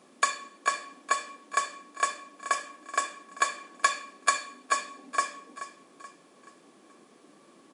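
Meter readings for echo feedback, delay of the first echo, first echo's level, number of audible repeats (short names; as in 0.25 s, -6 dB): 44%, 0.429 s, -13.5 dB, 4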